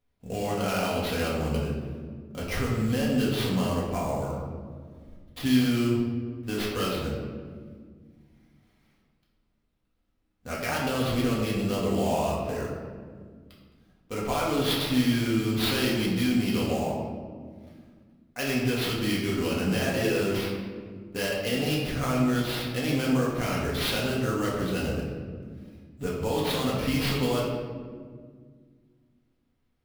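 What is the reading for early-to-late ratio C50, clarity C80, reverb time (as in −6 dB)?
1.0 dB, 3.0 dB, 1.8 s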